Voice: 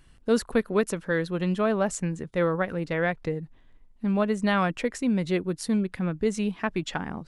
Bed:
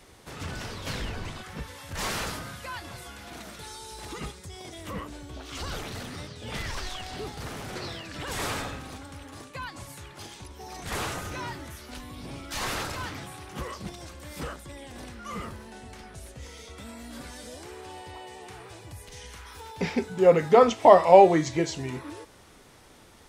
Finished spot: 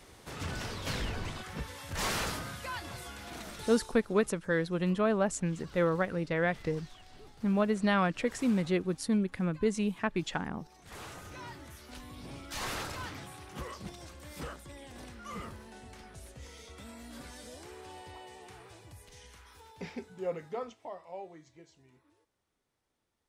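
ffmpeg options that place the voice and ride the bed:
-filter_complex "[0:a]adelay=3400,volume=-3.5dB[a];[1:a]volume=11dB,afade=t=out:st=3.71:d=0.27:silence=0.149624,afade=t=in:st=10.79:d=1.29:silence=0.237137,afade=t=out:st=18.08:d=2.83:silence=0.0630957[b];[a][b]amix=inputs=2:normalize=0"

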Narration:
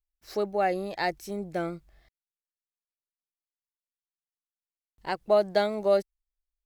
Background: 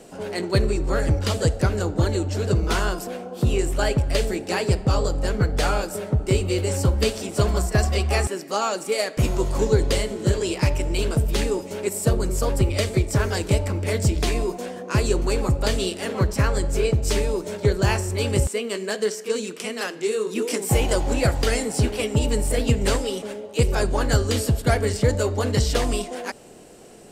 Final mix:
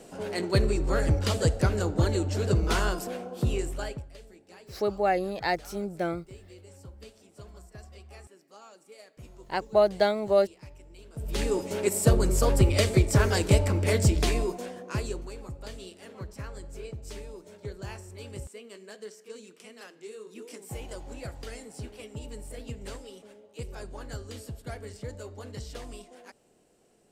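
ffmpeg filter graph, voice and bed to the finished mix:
-filter_complex "[0:a]adelay=4450,volume=1dB[a];[1:a]volume=23dB,afade=t=out:st=3.21:d=0.9:silence=0.0668344,afade=t=in:st=11.13:d=0.54:silence=0.0473151,afade=t=out:st=13.9:d=1.41:silence=0.11885[b];[a][b]amix=inputs=2:normalize=0"

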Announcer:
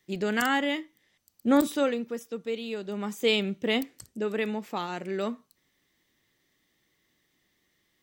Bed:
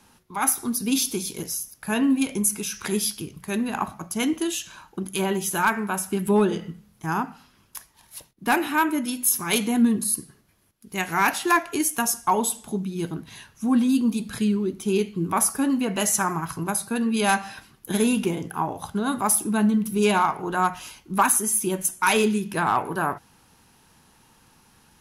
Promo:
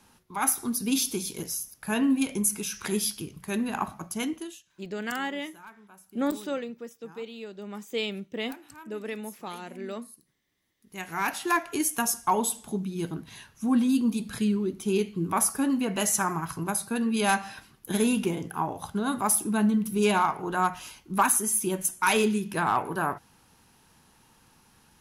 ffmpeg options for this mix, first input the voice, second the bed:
-filter_complex "[0:a]adelay=4700,volume=-6dB[a];[1:a]volume=20.5dB,afade=t=out:st=4.04:d=0.58:silence=0.0668344,afade=t=in:st=10.47:d=1.39:silence=0.0668344[b];[a][b]amix=inputs=2:normalize=0"

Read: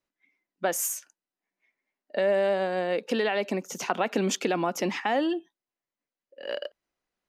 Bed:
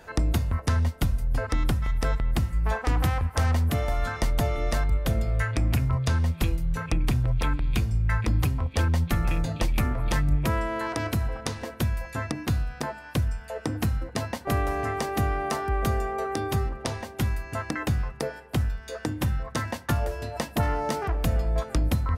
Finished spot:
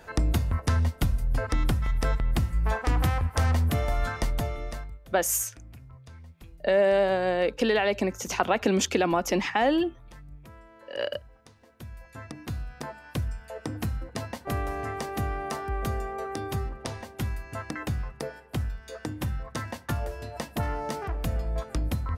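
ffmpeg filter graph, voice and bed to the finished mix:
-filter_complex "[0:a]adelay=4500,volume=2.5dB[a];[1:a]volume=18.5dB,afade=t=out:st=4.05:d=0.94:silence=0.0707946,afade=t=in:st=11.63:d=1.47:silence=0.112202[b];[a][b]amix=inputs=2:normalize=0"

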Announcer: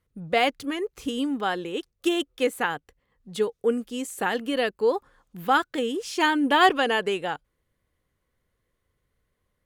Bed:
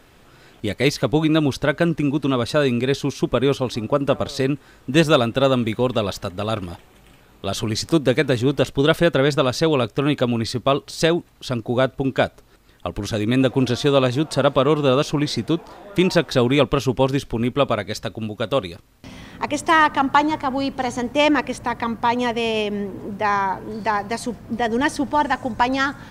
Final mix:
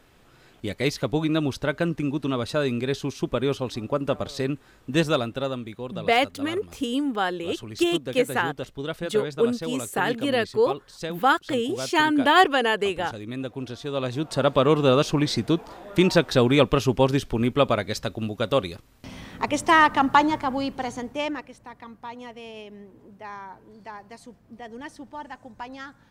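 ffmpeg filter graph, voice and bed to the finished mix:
-filter_complex "[0:a]adelay=5750,volume=1.5dB[a];[1:a]volume=7dB,afade=t=out:st=4.98:d=0.68:silence=0.375837,afade=t=in:st=13.86:d=0.85:silence=0.223872,afade=t=out:st=20.21:d=1.29:silence=0.141254[b];[a][b]amix=inputs=2:normalize=0"

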